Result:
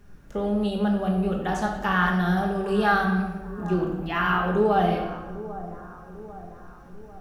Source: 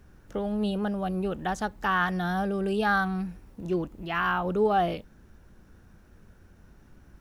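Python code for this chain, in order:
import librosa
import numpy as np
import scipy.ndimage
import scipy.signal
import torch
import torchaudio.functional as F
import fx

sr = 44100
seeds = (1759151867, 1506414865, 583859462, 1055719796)

p1 = x + fx.echo_split(x, sr, split_hz=1400.0, low_ms=796, high_ms=91, feedback_pct=52, wet_db=-15, dry=0)
y = fx.room_shoebox(p1, sr, seeds[0], volume_m3=470.0, walls='mixed', distance_m=1.3)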